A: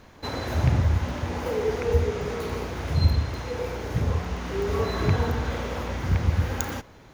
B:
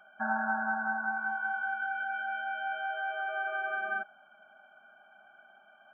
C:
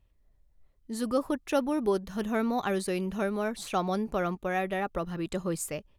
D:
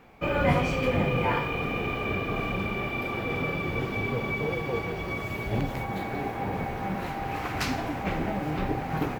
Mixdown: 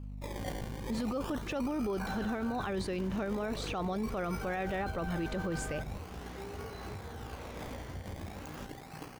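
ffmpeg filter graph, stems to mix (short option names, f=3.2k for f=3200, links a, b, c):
-filter_complex "[0:a]acompressor=threshold=-28dB:ratio=6,adelay=1850,volume=-12.5dB[a];[1:a]acrusher=bits=5:mode=log:mix=0:aa=0.000001,adelay=1800,volume=-9.5dB,asplit=3[b][c][d];[b]atrim=end=2.67,asetpts=PTS-STARTPTS,afade=t=out:st=2.666:d=0.004:c=hsin[e];[c]atrim=start=2.67:end=4.41,asetpts=PTS-STARTPTS,volume=0[f];[d]atrim=start=4.41,asetpts=PTS-STARTPTS,afade=t=in:d=0.004:c=hsin[g];[e][f][g]concat=n=3:v=0:a=1[h];[2:a]lowpass=4.8k,aeval=exprs='val(0)+0.00708*(sin(2*PI*50*n/s)+sin(2*PI*2*50*n/s)/2+sin(2*PI*3*50*n/s)/3+sin(2*PI*4*50*n/s)/4+sin(2*PI*5*50*n/s)/5)':c=same,volume=2dB[i];[3:a]lowpass=f=3k:t=q:w=4.1,acrusher=samples=23:mix=1:aa=0.000001:lfo=1:lforange=23:lforate=0.41,tremolo=f=58:d=0.571,volume=-15.5dB[j];[a][h][i][j]amix=inputs=4:normalize=0,alimiter=level_in=3dB:limit=-24dB:level=0:latency=1:release=13,volume=-3dB"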